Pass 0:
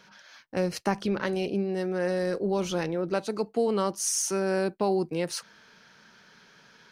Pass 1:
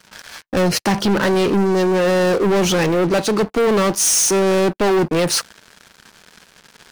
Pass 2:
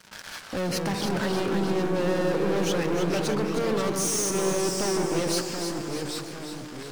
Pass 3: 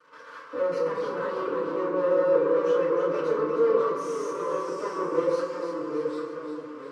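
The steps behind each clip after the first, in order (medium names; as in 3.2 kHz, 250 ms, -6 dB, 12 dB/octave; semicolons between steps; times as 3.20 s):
waveshaping leveller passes 5; trim +1 dB
peak limiter -22.5 dBFS, peak gain reduction 10.5 dB; echo whose repeats swap between lows and highs 155 ms, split 1.6 kHz, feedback 74%, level -5 dB; ever faster or slower copies 139 ms, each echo -2 st, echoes 2, each echo -6 dB; trim -2.5 dB
two resonant band-passes 760 Hz, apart 1.1 oct; FDN reverb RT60 0.46 s, low-frequency decay 1×, high-frequency decay 0.9×, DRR -9 dB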